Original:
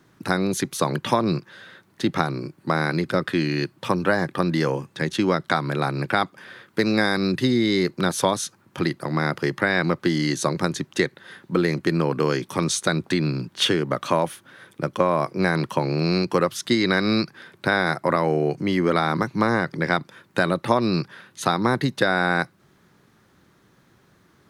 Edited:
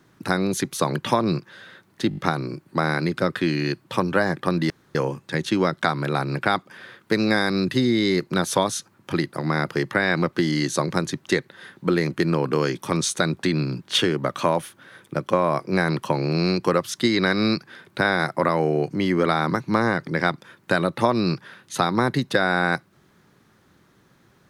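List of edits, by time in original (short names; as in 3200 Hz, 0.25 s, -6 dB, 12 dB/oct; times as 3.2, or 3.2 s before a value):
2.09 stutter 0.02 s, 5 plays
4.62 insert room tone 0.25 s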